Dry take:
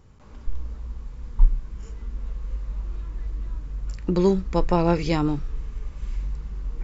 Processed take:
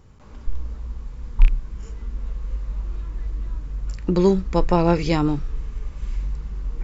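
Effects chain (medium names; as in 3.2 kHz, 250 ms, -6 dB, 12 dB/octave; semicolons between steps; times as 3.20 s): rattle on loud lows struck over -15 dBFS, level -22 dBFS; trim +2.5 dB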